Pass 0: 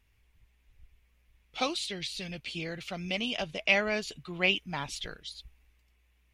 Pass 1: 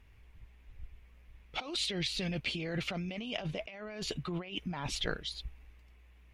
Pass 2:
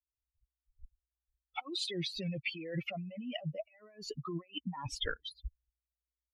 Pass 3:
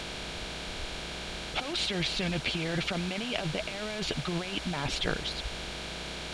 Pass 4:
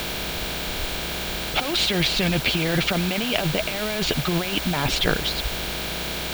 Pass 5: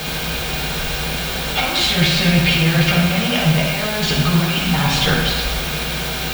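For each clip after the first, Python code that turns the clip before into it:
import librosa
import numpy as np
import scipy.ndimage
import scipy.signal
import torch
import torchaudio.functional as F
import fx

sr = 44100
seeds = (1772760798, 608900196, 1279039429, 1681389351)

y1 = fx.high_shelf(x, sr, hz=3200.0, db=-12.0)
y1 = fx.over_compress(y1, sr, threshold_db=-42.0, ratio=-1.0)
y1 = y1 * 10.0 ** (4.0 / 20.0)
y2 = fx.bin_expand(y1, sr, power=3.0)
y2 = fx.high_shelf(y2, sr, hz=8300.0, db=-10.0)
y2 = y2 * 10.0 ** (4.0 / 20.0)
y3 = fx.bin_compress(y2, sr, power=0.2)
y4 = fx.dmg_noise_colour(y3, sr, seeds[0], colour='violet', level_db=-46.0)
y4 = y4 * 10.0 ** (9.0 / 20.0)
y5 = fx.dynamic_eq(y4, sr, hz=400.0, q=1.9, threshold_db=-40.0, ratio=4.0, max_db=-7)
y5 = fx.rev_fdn(y5, sr, rt60_s=1.6, lf_ratio=0.8, hf_ratio=0.6, size_ms=38.0, drr_db=-5.5)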